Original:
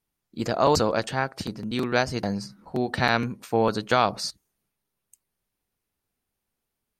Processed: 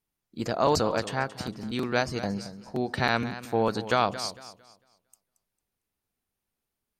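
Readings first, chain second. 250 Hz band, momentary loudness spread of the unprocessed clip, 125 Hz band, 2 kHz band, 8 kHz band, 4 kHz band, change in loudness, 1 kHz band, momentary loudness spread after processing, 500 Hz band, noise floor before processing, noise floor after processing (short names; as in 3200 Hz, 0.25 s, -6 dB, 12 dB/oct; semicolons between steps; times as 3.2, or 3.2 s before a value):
-3.0 dB, 11 LU, -3.0 dB, -3.0 dB, -3.0 dB, -3.0 dB, -3.0 dB, -3.0 dB, 11 LU, -3.0 dB, -83 dBFS, under -85 dBFS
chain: warbling echo 0.226 s, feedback 30%, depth 101 cents, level -14 dB; gain -3 dB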